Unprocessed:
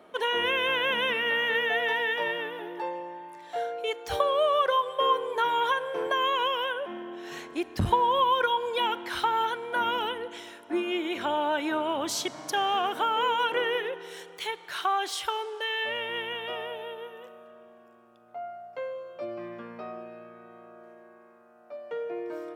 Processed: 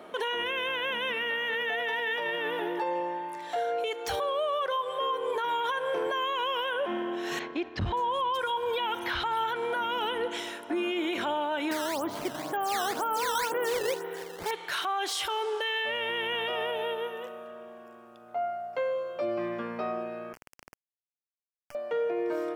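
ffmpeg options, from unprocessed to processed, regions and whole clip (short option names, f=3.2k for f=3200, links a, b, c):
-filter_complex "[0:a]asettb=1/sr,asplit=3[a][b][c];[a]atrim=end=7.394[d];[b]atrim=start=7.39:end=9.56,asetpts=PTS-STARTPTS,afade=t=in:d=0.004:c=qsin,afade=t=out:st=2.166:d=0.004:c=qsin,asubboost=boost=9.5:cutoff=100,acrossover=split=5000[e][f];[f]adelay=580[g];[e][g]amix=inputs=2:normalize=0,atrim=end_sample=95697,agate=range=-33dB:threshold=-42dB:ratio=3:release=100:detection=peak[h];[c]atrim=start=9.556[i];[d][h]acrossfade=d=0.004:c1=hsin:c2=qsin[j];[j][i]acrossfade=d=0.004:c1=qsin:c2=hsin,asettb=1/sr,asplit=3[k][l][m];[k]atrim=end=11.714[n];[l]atrim=start=11.71:end=14.51,asetpts=PTS-STARTPTS,afade=t=in:d=0.004:c=qsin,afade=t=out:st=2.796:d=0.004:c=qsin,lowpass=1.5k,acrusher=samples=11:mix=1:aa=0.000001:lfo=1:lforange=17.6:lforate=2[o];[m]atrim=start=14.506[p];[n][o]acrossfade=d=0.004:c1=hsin:c2=qsin[q];[q][p]acrossfade=d=0.004:c1=qsin:c2=hsin,asettb=1/sr,asplit=3[r][s][t];[r]atrim=end=20.334[u];[s]atrim=start=20.33:end=21.75,asetpts=PTS-STARTPTS,afade=t=in:d=0.004:c=qsin,afade=t=out:st=1.416:d=0.004:c=qsin,acrusher=bits=4:dc=4:mix=0:aa=0.000001,acompressor=threshold=-53dB:ratio=6:attack=3.2:release=140:knee=1:detection=peak,asuperstop=centerf=3800:order=4:qfactor=2.3[v];[t]atrim=start=21.746[w];[u][v]acrossfade=d=0.004:c1=hsin:c2=qsin[x];[x][w]acrossfade=d=0.004:c1=qsin:c2=hsin,lowshelf=f=110:g=-5,acompressor=threshold=-31dB:ratio=6,alimiter=level_in=5.5dB:limit=-24dB:level=0:latency=1:release=13,volume=-5.5dB,volume=7dB"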